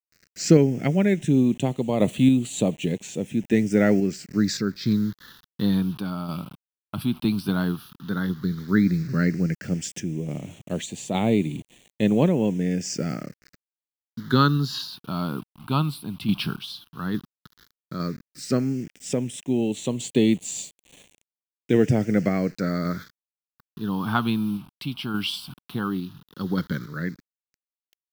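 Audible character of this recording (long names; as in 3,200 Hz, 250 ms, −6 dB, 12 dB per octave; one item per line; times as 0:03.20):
a quantiser's noise floor 8 bits, dither none
sample-and-hold tremolo
phaser sweep stages 6, 0.11 Hz, lowest notch 490–1,400 Hz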